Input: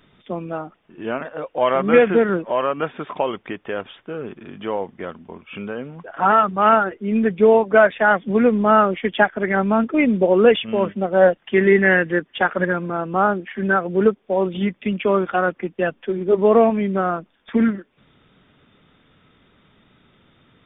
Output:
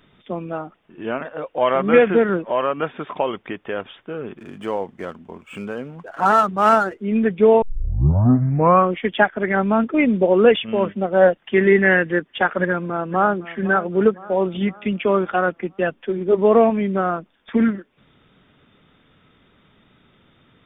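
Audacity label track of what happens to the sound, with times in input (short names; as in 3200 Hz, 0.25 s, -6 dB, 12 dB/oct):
4.380000	7.020000	median filter over 9 samples
7.620000	7.620000	tape start 1.34 s
12.580000	13.400000	echo throw 0.51 s, feedback 50%, level -15.5 dB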